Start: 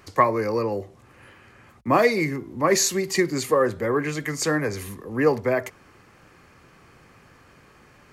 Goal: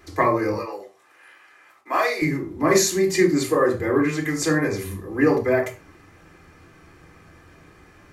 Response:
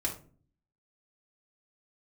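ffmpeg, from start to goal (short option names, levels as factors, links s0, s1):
-filter_complex "[0:a]asettb=1/sr,asplit=3[s0][s1][s2];[s0]atrim=end=0.534[s3];[s1]atrim=start=0.53:end=2.22,asetpts=PTS-STARTPTS,afade=t=in:d=0.004:c=qsin,afade=t=out:st=1.686:d=0.004:c=qsin,highpass=790[s4];[s2]atrim=start=2.216[s5];[s3][s4]acrossfade=d=0.004:c1=hsin:c2=qsin[s6];[s6][s5]acrossfade=d=0.004:c1=qsin:c2=hsin[s7];[1:a]atrim=start_sample=2205,atrim=end_sample=6174[s8];[s7][s8]afir=irnorm=-1:irlink=0,volume=0.75"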